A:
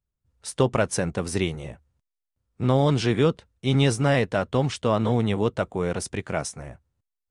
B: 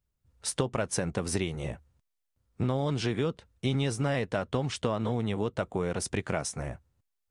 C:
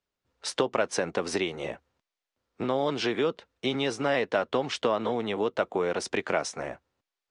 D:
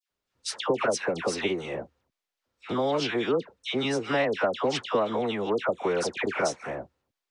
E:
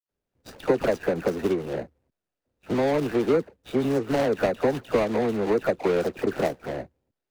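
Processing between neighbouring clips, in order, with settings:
compressor 6:1, threshold -29 dBFS, peak gain reduction 13.5 dB; gain +3 dB
three-band isolator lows -21 dB, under 260 Hz, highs -21 dB, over 6200 Hz; gain +5.5 dB
dispersion lows, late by 0.104 s, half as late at 1500 Hz; gain +1 dB
median filter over 41 samples; gain +5.5 dB

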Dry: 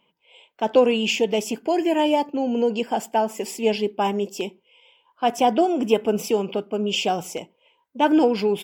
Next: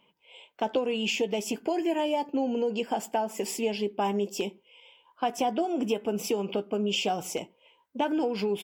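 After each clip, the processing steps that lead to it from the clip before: compressor 4:1, threshold -26 dBFS, peak gain reduction 13 dB; doubler 15 ms -12 dB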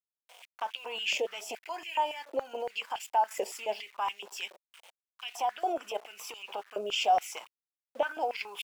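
level quantiser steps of 11 dB; sample gate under -51.5 dBFS; stepped high-pass 7.1 Hz 570–2600 Hz; gain +1 dB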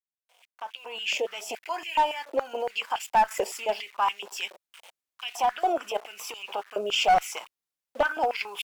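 opening faded in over 1.64 s; dynamic EQ 1300 Hz, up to +5 dB, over -43 dBFS, Q 1.6; one-sided clip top -23 dBFS; gain +5 dB

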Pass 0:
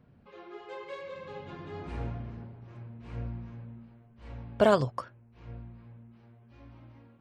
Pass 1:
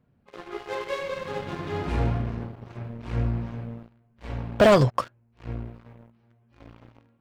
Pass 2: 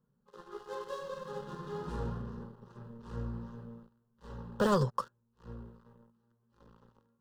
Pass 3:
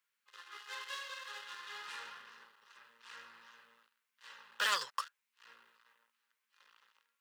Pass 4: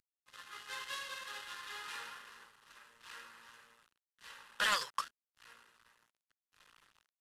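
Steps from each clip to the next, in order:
sample leveller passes 3
fixed phaser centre 450 Hz, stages 8; gain -7 dB
resonant high-pass 2200 Hz, resonance Q 4.3; gain +6 dB
CVSD 64 kbps; gain +1 dB

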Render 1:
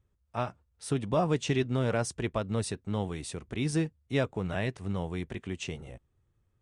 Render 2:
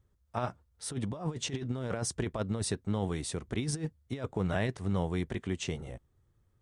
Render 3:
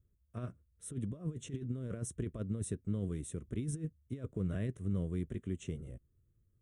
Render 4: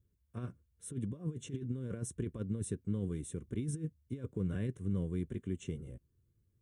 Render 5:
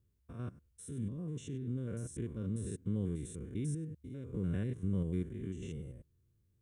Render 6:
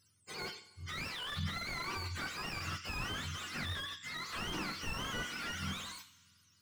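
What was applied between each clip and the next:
bell 2600 Hz -5.5 dB 0.34 oct; negative-ratio compressor -31 dBFS, ratio -0.5
bell 2000 Hz -13 dB 1.9 oct; fixed phaser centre 2000 Hz, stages 4; gain -2.5 dB
notch comb 640 Hz; gain +1 dB
stepped spectrum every 0.1 s; gain +1.5 dB
spectrum mirrored in octaves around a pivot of 730 Hz; two-slope reverb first 0.7 s, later 2.4 s, from -17 dB, DRR 10.5 dB; slew limiter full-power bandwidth 8.3 Hz; gain +10 dB

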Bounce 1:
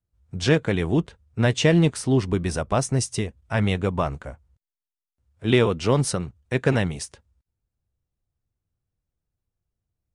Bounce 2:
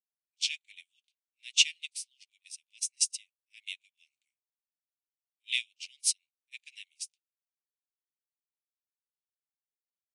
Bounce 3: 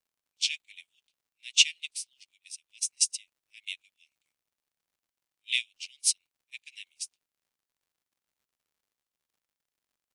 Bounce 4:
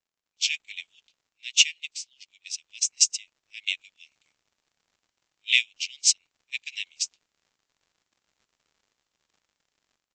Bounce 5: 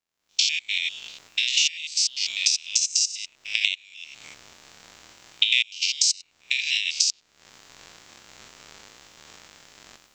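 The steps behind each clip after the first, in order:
steep high-pass 2300 Hz 72 dB/oct; pre-echo 39 ms -18 dB; upward expander 2.5:1, over -45 dBFS; gain +6.5 dB
crackle 110/s -68 dBFS; gain +2.5 dB
steep low-pass 7700 Hz 96 dB/oct; dynamic EQ 4000 Hz, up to -6 dB, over -41 dBFS, Q 1.3; AGC gain up to 13.5 dB; gain -1 dB
stepped spectrum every 0.1 s; recorder AGC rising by 57 dB/s; dynamic EQ 4500 Hz, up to +7 dB, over -39 dBFS, Q 1.5; gain -1 dB

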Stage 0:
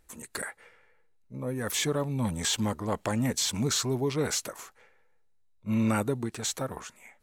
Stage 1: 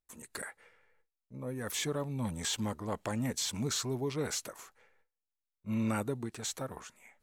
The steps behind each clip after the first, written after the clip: gate with hold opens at -54 dBFS; gain -6 dB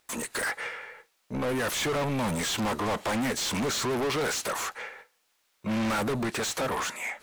overdrive pedal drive 38 dB, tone 4400 Hz, clips at -19 dBFS; gain -2 dB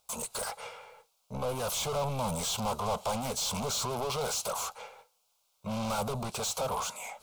fixed phaser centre 750 Hz, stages 4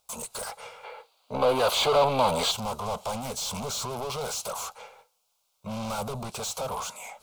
spectral gain 0.84–2.51, 240–4900 Hz +11 dB

